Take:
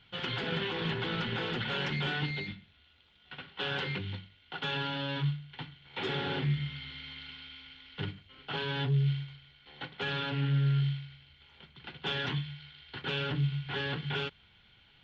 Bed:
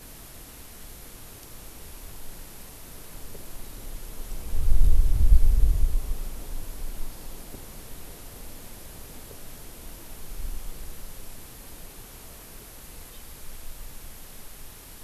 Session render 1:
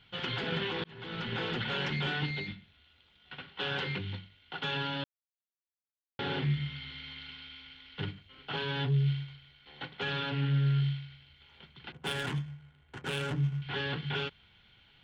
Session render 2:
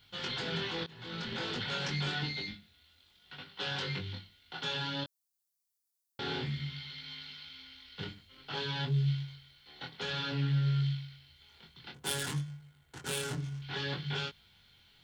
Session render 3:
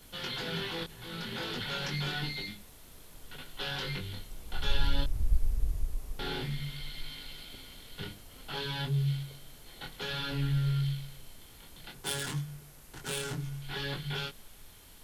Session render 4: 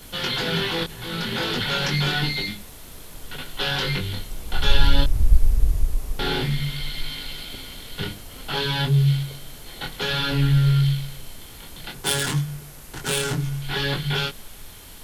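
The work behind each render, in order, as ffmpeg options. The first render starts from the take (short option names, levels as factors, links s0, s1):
-filter_complex "[0:a]asettb=1/sr,asplit=3[s0][s1][s2];[s0]atrim=end=11.924[s3];[s1]atrim=start=11.92:end=13.62,asetpts=PTS-STARTPTS,afade=t=in:d=0.004:c=qsin,afade=t=out:st=1.696:d=0.004:c=qsin,adynamicsmooth=sensitivity=7:basefreq=840[s4];[s2]atrim=start=13.616[s5];[s3][s4]acrossfade=d=0.004:c1=hsin:c2=qsin[s6];[s6][s5]acrossfade=d=0.004:c1=qsin:c2=hsin,asplit=4[s7][s8][s9][s10];[s7]atrim=end=0.84,asetpts=PTS-STARTPTS,afade=t=out:st=0.836:d=0.004:c=hsin[s11];[s8]atrim=start=0.84:end=5.04,asetpts=PTS-STARTPTS,afade=t=in:d=0.56,afade=t=out:st=4.196:d=0.004:c=hsin[s12];[s9]atrim=start=5.04:end=6.19,asetpts=PTS-STARTPTS,volume=0[s13];[s10]atrim=start=6.19,asetpts=PTS-STARTPTS,afade=t=in:d=0.004:c=hsin[s14];[s11][s12][s13][s14]concat=n=4:v=0:a=1"
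-af "aexciter=amount=6:drive=2.5:freq=4100,flanger=delay=20:depth=4.3:speed=0.56"
-filter_complex "[1:a]volume=0.316[s0];[0:a][s0]amix=inputs=2:normalize=0"
-af "volume=3.76"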